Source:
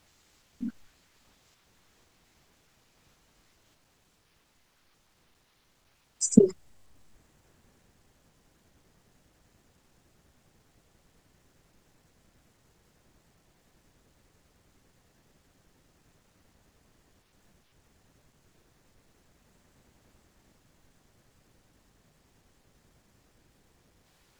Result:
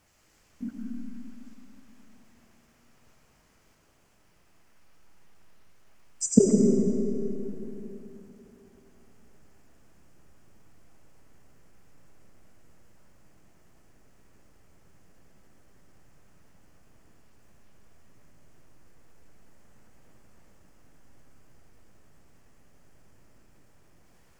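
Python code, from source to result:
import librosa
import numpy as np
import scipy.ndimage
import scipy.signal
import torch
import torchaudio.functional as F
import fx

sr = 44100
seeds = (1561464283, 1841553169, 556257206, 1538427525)

y = fx.peak_eq(x, sr, hz=3800.0, db=-8.5, octaves=0.51)
y = fx.rev_freeverb(y, sr, rt60_s=3.4, hf_ratio=0.7, predelay_ms=50, drr_db=-1.5)
y = F.gain(torch.from_numpy(y), -1.0).numpy()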